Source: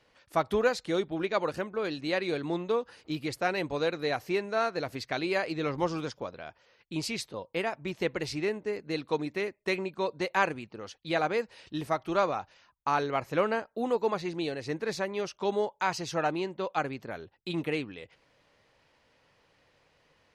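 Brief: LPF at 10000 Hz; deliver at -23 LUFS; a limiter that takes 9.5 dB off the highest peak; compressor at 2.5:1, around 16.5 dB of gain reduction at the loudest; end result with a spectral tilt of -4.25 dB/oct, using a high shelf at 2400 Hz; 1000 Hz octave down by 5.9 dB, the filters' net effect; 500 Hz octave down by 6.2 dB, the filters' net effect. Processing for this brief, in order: LPF 10000 Hz; bell 500 Hz -6.5 dB; bell 1000 Hz -6.5 dB; high shelf 2400 Hz +4 dB; compressor 2.5:1, threshold -52 dBFS; gain +28 dB; limiter -11.5 dBFS

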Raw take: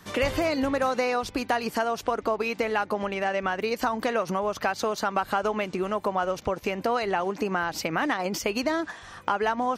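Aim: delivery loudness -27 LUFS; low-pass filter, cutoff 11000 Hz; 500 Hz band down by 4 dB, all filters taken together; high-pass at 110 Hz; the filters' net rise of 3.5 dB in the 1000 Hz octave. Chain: HPF 110 Hz; LPF 11000 Hz; bell 500 Hz -7.5 dB; bell 1000 Hz +7 dB; gain -0.5 dB

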